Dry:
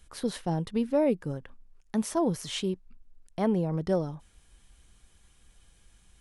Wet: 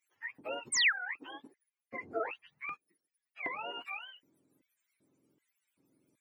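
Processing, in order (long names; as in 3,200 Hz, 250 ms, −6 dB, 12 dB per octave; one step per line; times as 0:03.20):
frequency axis turned over on the octave scale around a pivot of 670 Hz
drawn EQ curve 480 Hz 0 dB, 2,400 Hz −6 dB, 5,300 Hz −12 dB
sound drawn into the spectrogram fall, 0:00.72–0:00.93, 1,200–9,400 Hz −26 dBFS
auto-filter high-pass square 1.3 Hz 320–2,000 Hz
level −5 dB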